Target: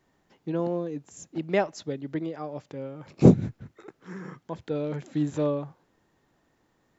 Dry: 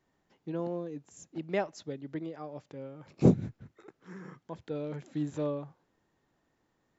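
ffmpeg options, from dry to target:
ffmpeg -i in.wav -af "volume=6.5dB" out.wav

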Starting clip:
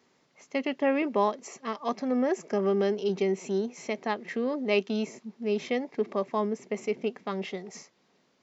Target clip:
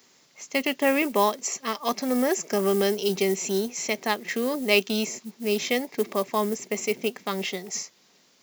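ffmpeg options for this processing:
ffmpeg -i in.wav -af "acrusher=bits=8:mode=log:mix=0:aa=0.000001,crystalizer=i=5:c=0,volume=2dB" out.wav

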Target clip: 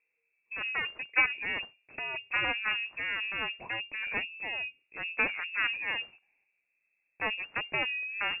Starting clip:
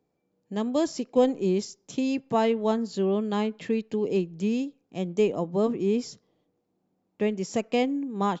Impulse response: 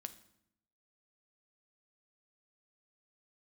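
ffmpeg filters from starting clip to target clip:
-af "aexciter=amount=3.8:drive=3.6:freq=2200,aeval=exprs='0.355*(cos(1*acos(clip(val(0)/0.355,-1,1)))-cos(1*PI/2))+0.112*(cos(7*acos(clip(val(0)/0.355,-1,1)))-cos(7*PI/2))':channel_layout=same,lowpass=frequency=2400:width_type=q:width=0.5098,lowpass=frequency=2400:width_type=q:width=0.6013,lowpass=frequency=2400:width_type=q:width=0.9,lowpass=frequency=2400:width_type=q:width=2.563,afreqshift=-2800,volume=-5.5dB"

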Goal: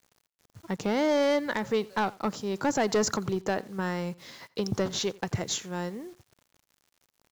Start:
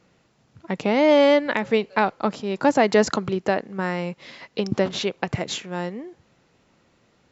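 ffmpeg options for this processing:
ffmpeg -i in.wav -filter_complex "[0:a]equalizer=frequency=100:width_type=o:width=0.67:gain=4,equalizer=frequency=250:width_type=o:width=0.67:gain=-3,equalizer=frequency=630:width_type=o:width=0.67:gain=-4,equalizer=frequency=2500:width_type=o:width=0.67:gain=-7,equalizer=frequency=6300:width_type=o:width=0.67:gain=7,aeval=exprs='(tanh(6.31*val(0)+0.05)-tanh(0.05))/6.31':channel_layout=same,acrusher=bits=8:mix=0:aa=0.000001,asplit=2[link_01][link_02];[link_02]aecho=0:1:87:0.075[link_03];[link_01][link_03]amix=inputs=2:normalize=0,volume=-2.5dB" out.wav

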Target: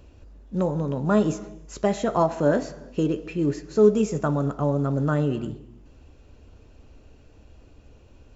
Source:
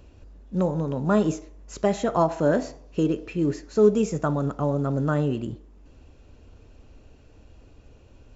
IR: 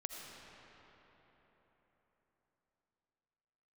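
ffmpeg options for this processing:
-filter_complex "[0:a]asplit=2[link_01][link_02];[1:a]atrim=start_sample=2205,afade=type=out:start_time=0.39:duration=0.01,atrim=end_sample=17640,adelay=14[link_03];[link_02][link_03]afir=irnorm=-1:irlink=0,volume=-12dB[link_04];[link_01][link_04]amix=inputs=2:normalize=0"

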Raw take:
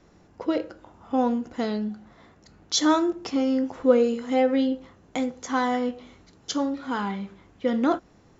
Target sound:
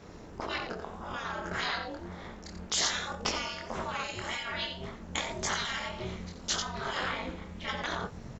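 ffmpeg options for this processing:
ffmpeg -i in.wav -filter_complex "[0:a]asettb=1/sr,asplit=3[link_01][link_02][link_03];[link_01]atrim=end=1.164[link_04];[link_02]atrim=start=1.16:end=1.75,asetpts=PTS-STARTPTS,afade=type=in:duration=0.004:curve=qsin,afade=type=out:start_time=0.586:duration=0.004:curve=qsin,equalizer=frequency=1500:width=2.6:gain=13[link_05];[link_03]atrim=start=1.746[link_06];[link_04][link_05]acrossfade=duration=0.004:curve1=hsin:curve2=qsin[link_07];[link_07][link_06]acrossfade=duration=0.004:curve1=qsin:curve2=hsin,asplit=2[link_08][link_09];[link_09]aecho=0:1:88:0.335[link_10];[link_08][link_10]amix=inputs=2:normalize=0,asubboost=boost=5.5:cutoff=70,asplit=2[link_11][link_12];[link_12]acompressor=threshold=-31dB:ratio=6,volume=-2.5dB[link_13];[link_11][link_13]amix=inputs=2:normalize=0,afftfilt=real='re*lt(hypot(re,im),0.112)':imag='im*lt(hypot(re,im),0.112)':win_size=1024:overlap=0.75,flanger=delay=19.5:depth=6.3:speed=1.8,aeval=exprs='val(0)*sin(2*PI*130*n/s)':channel_layout=same,volume=9dB" out.wav

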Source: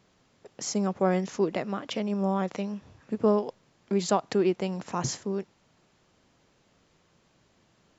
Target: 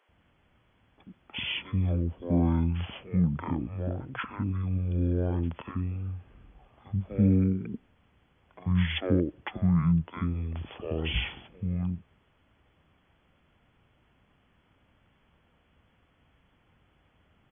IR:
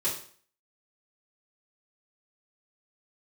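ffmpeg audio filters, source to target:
-filter_complex "[0:a]acrossover=split=900[link_01][link_02];[link_01]adelay=40[link_03];[link_03][link_02]amix=inputs=2:normalize=0,asetrate=20110,aresample=44100"

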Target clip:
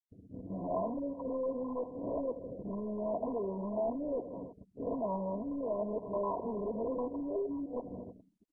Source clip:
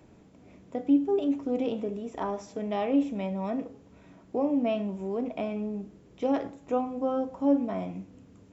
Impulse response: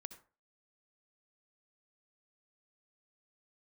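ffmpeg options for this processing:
-filter_complex "[0:a]areverse,bandreject=frequency=60:width_type=h:width=6,bandreject=frequency=120:width_type=h:width=6,bandreject=frequency=180:width_type=h:width=6,asplit=2[link_01][link_02];[link_02]acrusher=bits=2:mode=log:mix=0:aa=0.000001,volume=-11dB[link_03];[link_01][link_03]amix=inputs=2:normalize=0,agate=range=-30dB:threshold=-48dB:ratio=16:detection=peak,aecho=1:1:79|158|237|316:0.112|0.0595|0.0315|0.0167,acompressor=threshold=-37dB:ratio=8,aeval=exprs='0.0376*sin(PI/2*2.24*val(0)/0.0376)':channel_layout=same,acrossover=split=470[link_04][link_05];[link_04]acompressor=threshold=-45dB:ratio=3[link_06];[link_06][link_05]amix=inputs=2:normalize=0,asuperstop=centerf=830:order=20:qfactor=4.2,asplit=2[link_07][link_08];[1:a]atrim=start_sample=2205,asetrate=66150,aresample=44100[link_09];[link_08][link_09]afir=irnorm=-1:irlink=0,volume=-2.5dB[link_10];[link_07][link_10]amix=inputs=2:normalize=0,afftfilt=real='re*gte(hypot(re,im),0.00355)':imag='im*gte(hypot(re,im),0.00355)':win_size=1024:overlap=0.75" -ar 22050 -c:a mp2 -b:a 8k

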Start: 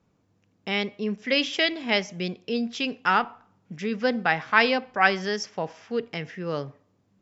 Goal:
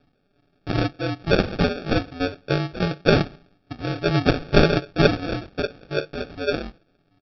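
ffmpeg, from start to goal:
ffmpeg -i in.wav -af "aphaser=in_gain=1:out_gain=1:delay=4.7:decay=0.51:speed=1.2:type=triangular,aeval=exprs='val(0)*sin(2*PI*88*n/s)':channel_layout=same,aecho=1:1:7.1:0.52,aresample=11025,acrusher=samples=11:mix=1:aa=0.000001,aresample=44100,volume=4.5dB" out.wav

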